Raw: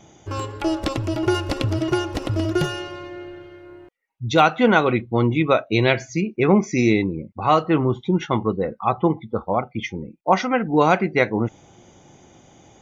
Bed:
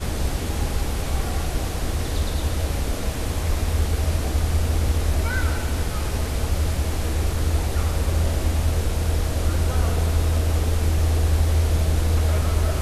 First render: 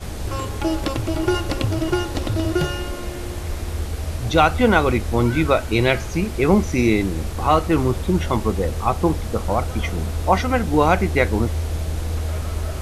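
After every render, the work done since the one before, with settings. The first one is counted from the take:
mix in bed −4.5 dB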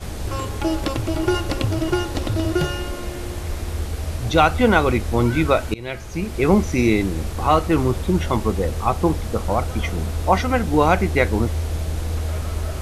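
0:05.74–0:06.46: fade in, from −23.5 dB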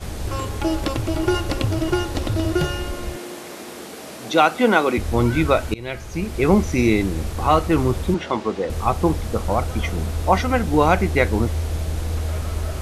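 0:03.16–0:04.98: high-pass filter 200 Hz 24 dB per octave
0:08.14–0:08.70: band-pass filter 240–5,000 Hz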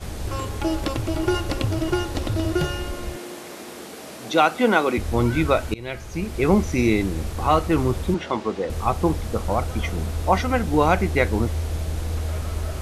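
level −2 dB

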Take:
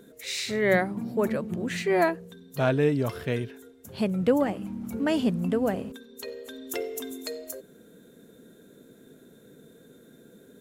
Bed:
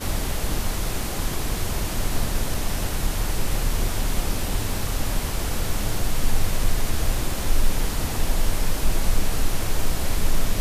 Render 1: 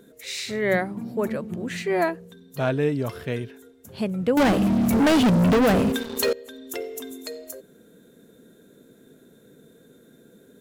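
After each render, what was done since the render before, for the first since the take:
0:04.37–0:06.33: leveller curve on the samples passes 5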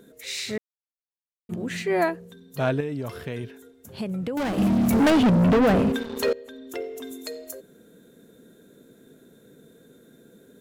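0:00.58–0:01.49: silence
0:02.80–0:04.58: downward compressor 5 to 1, threshold −26 dBFS
0:05.10–0:07.03: high-shelf EQ 4,200 Hz −10.5 dB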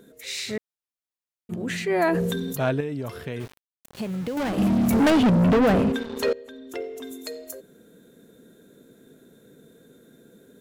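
0:01.55–0:02.63: level that may fall only so fast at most 24 dB per second
0:03.40–0:04.49: centre clipping without the shift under −38 dBFS
0:05.84–0:07.03: high-shelf EQ 11,000 Hz −7.5 dB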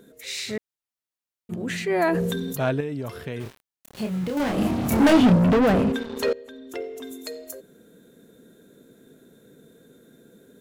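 0:03.43–0:05.39: double-tracking delay 28 ms −3.5 dB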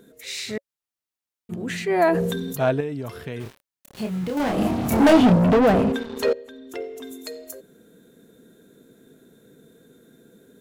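notch filter 560 Hz, Q 15
dynamic equaliser 650 Hz, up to +5 dB, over −32 dBFS, Q 1.2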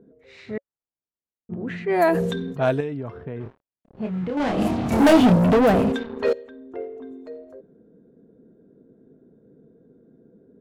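low-pass that shuts in the quiet parts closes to 570 Hz, open at −16 dBFS
high-shelf EQ 12,000 Hz +7.5 dB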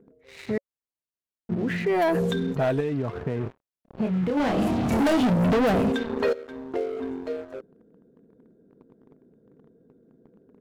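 leveller curve on the samples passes 2
downward compressor 2.5 to 1, threshold −25 dBFS, peak gain reduction 10.5 dB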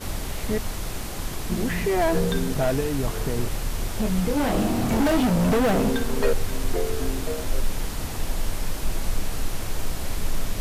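mix in bed −4.5 dB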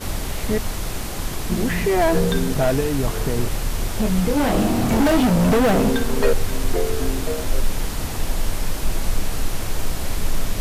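level +4 dB

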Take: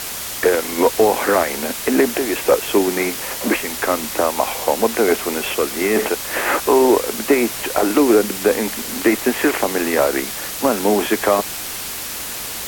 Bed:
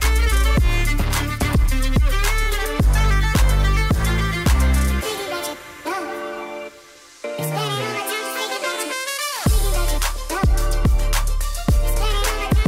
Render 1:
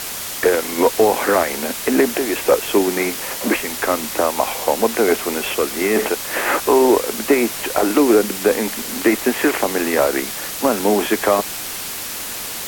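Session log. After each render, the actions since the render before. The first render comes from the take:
hum removal 60 Hz, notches 2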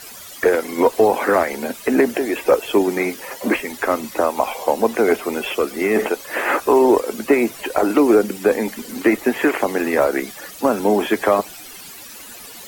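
broadband denoise 14 dB, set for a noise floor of −28 dBFS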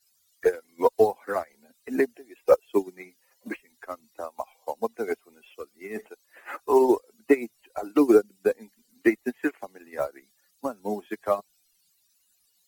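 spectral dynamics exaggerated over time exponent 1.5
expander for the loud parts 2.5 to 1, over −28 dBFS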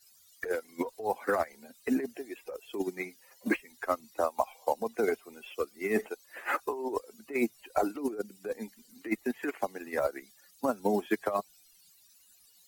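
compressor whose output falls as the input rises −30 dBFS, ratio −1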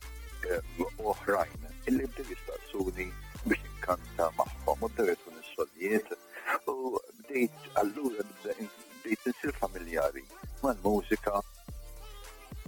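mix in bed −28 dB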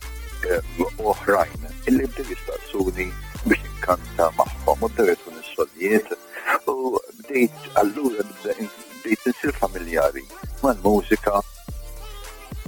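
level +10.5 dB

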